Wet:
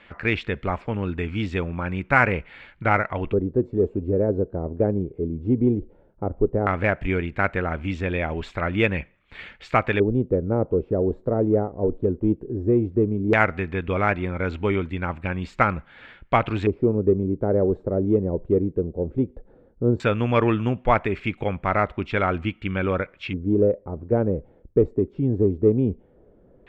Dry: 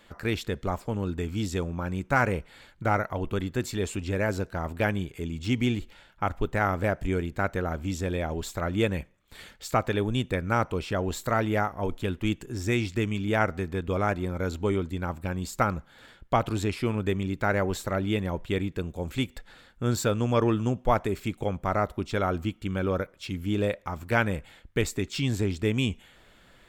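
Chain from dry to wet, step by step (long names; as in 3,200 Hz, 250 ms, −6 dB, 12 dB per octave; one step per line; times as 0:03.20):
auto-filter low-pass square 0.15 Hz 450–2,400 Hz
harmonic generator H 7 −42 dB, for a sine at −5 dBFS
level +3.5 dB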